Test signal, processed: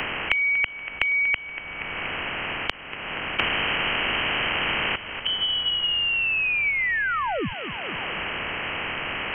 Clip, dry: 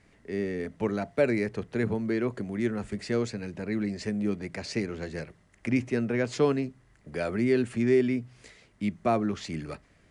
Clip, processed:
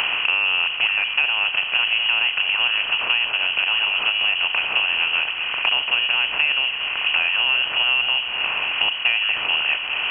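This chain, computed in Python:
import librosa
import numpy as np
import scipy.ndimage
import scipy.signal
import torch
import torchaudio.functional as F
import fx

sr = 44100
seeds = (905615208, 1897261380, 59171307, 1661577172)

p1 = fx.bin_compress(x, sr, power=0.4)
p2 = fx.hum_notches(p1, sr, base_hz=50, count=4)
p3 = p2 + fx.echo_feedback(p2, sr, ms=238, feedback_pct=39, wet_db=-15.0, dry=0)
p4 = fx.freq_invert(p3, sr, carrier_hz=3100)
p5 = fx.band_squash(p4, sr, depth_pct=100)
y = p5 * librosa.db_to_amplitude(1.0)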